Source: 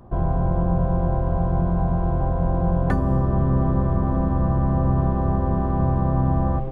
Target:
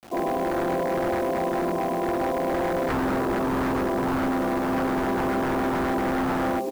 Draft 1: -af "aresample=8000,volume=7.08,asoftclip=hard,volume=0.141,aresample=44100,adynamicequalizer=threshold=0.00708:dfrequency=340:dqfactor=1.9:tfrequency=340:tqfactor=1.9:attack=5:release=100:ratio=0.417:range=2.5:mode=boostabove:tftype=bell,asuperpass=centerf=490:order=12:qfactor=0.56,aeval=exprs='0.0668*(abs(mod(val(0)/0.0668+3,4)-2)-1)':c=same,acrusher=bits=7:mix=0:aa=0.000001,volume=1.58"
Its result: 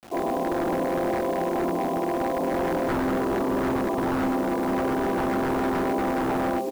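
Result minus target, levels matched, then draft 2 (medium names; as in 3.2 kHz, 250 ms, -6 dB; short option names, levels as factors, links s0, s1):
overload inside the chain: distortion +39 dB
-af "aresample=8000,volume=2.66,asoftclip=hard,volume=0.376,aresample=44100,adynamicequalizer=threshold=0.00708:dfrequency=340:dqfactor=1.9:tfrequency=340:tqfactor=1.9:attack=5:release=100:ratio=0.417:range=2.5:mode=boostabove:tftype=bell,asuperpass=centerf=490:order=12:qfactor=0.56,aeval=exprs='0.0668*(abs(mod(val(0)/0.0668+3,4)-2)-1)':c=same,acrusher=bits=7:mix=0:aa=0.000001,volume=1.58"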